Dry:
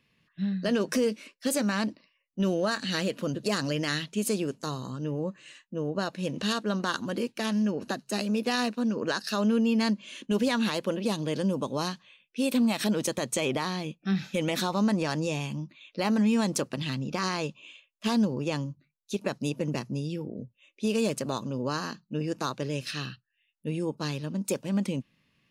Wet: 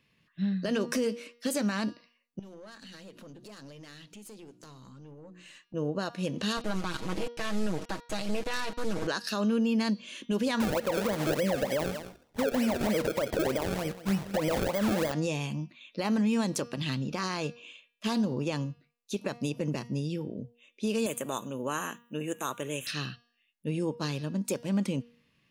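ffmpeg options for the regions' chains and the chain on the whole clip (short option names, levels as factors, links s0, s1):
-filter_complex "[0:a]asettb=1/sr,asplit=3[s0][s1][s2];[s0]atrim=end=2.394[s3];[s1]atrim=start=2.39:end=5.74,asetpts=PTS-STARTPTS,afade=t=in:d=0.004:c=qsin,afade=t=out:st=3.346:d=0.004:c=qsin,bandreject=f=60:t=h:w=6,bandreject=f=120:t=h:w=6,bandreject=f=180:t=h:w=6,bandreject=f=240:t=h:w=6,bandreject=f=300:t=h:w=6,bandreject=f=360:t=h:w=6,acompressor=threshold=0.00562:ratio=4:attack=3.2:release=140:knee=1:detection=peak,aeval=exprs='(tanh(112*val(0)+0.3)-tanh(0.3))/112':c=same[s4];[s2]atrim=start=5.736[s5];[s3][s4]acrossfade=d=0.004:c1=hsin:c2=qsin[s6];[s6][s5]acrossfade=d=0.004:c1=qsin:c2=hsin,asettb=1/sr,asplit=3[s7][s8][s9];[s7]atrim=end=6.574[s10];[s8]atrim=start=6.57:end=9.07,asetpts=PTS-STARTPTS,afade=t=in:d=0.004:c=qsin,afade=t=out:st=2.496:d=0.004:c=qsin,acrusher=bits=4:dc=4:mix=0:aa=0.000001,lowpass=9200,aecho=1:1:6.3:0.74,atrim=end_sample=110250[s11];[s9]atrim=start=9.066[s12];[s10][s11]acrossfade=d=0.004:c1=hsin:c2=qsin[s13];[s13][s12]acrossfade=d=0.004:c1=qsin:c2=hsin,asettb=1/sr,asplit=3[s14][s15][s16];[s14]atrim=end=10.604[s17];[s15]atrim=start=10.6:end=15.12,asetpts=PTS-STARTPTS,afade=t=in:d=0.004:c=qsin,afade=t=out:st=4.516:d=0.004:c=qsin,equalizer=f=570:w=2.8:g=14.5,acrusher=samples=31:mix=1:aa=0.000001:lfo=1:lforange=31:lforate=3.3,aecho=1:1:188:0.141,atrim=end_sample=199332[s18];[s16]atrim=start=15.116[s19];[s17][s18]acrossfade=d=0.004:c1=hsin:c2=qsin[s20];[s20][s19]acrossfade=d=0.004:c1=qsin:c2=hsin,asettb=1/sr,asplit=3[s21][s22][s23];[s21]atrim=end=21.064[s24];[s22]atrim=start=21.06:end=22.87,asetpts=PTS-STARTPTS,afade=t=in:d=0.004:c=qsin,afade=t=out:st=1.806:d=0.004:c=qsin,asuperstop=centerf=4800:order=8:qfactor=1.7,aemphasis=mode=production:type=bsi[s25];[s23]atrim=start=22.866[s26];[s24][s25]acrossfade=d=0.004:c1=hsin:c2=qsin[s27];[s27][s26]acrossfade=d=0.004:c1=qsin:c2=hsin,deesser=0.45,bandreject=f=237.6:t=h:w=4,bandreject=f=475.2:t=h:w=4,bandreject=f=712.8:t=h:w=4,bandreject=f=950.4:t=h:w=4,bandreject=f=1188:t=h:w=4,bandreject=f=1425.6:t=h:w=4,bandreject=f=1663.2:t=h:w=4,bandreject=f=1900.8:t=h:w=4,bandreject=f=2138.4:t=h:w=4,bandreject=f=2376:t=h:w=4,bandreject=f=2613.6:t=h:w=4,bandreject=f=2851.2:t=h:w=4,bandreject=f=3088.8:t=h:w=4,bandreject=f=3326.4:t=h:w=4,bandreject=f=3564:t=h:w=4,bandreject=f=3801.6:t=h:w=4,bandreject=f=4039.2:t=h:w=4,bandreject=f=4276.8:t=h:w=4,bandreject=f=4514.4:t=h:w=4,bandreject=f=4752:t=h:w=4,bandreject=f=4989.6:t=h:w=4,bandreject=f=5227.2:t=h:w=4,bandreject=f=5464.8:t=h:w=4,bandreject=f=5702.4:t=h:w=4,bandreject=f=5940:t=h:w=4,alimiter=limit=0.0944:level=0:latency=1:release=75"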